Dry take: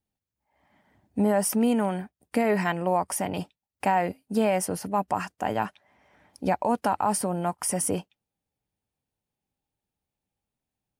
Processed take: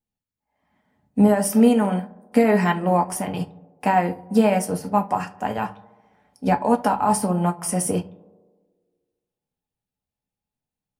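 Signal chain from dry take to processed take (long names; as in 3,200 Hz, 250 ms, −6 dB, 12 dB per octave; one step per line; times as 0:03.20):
tape delay 71 ms, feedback 83%, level −13 dB, low-pass 1,500 Hz
on a send at −4 dB: convolution reverb RT60 0.25 s, pre-delay 4 ms
on the sum: expander for the loud parts 1.5 to 1, over −37 dBFS
level +5 dB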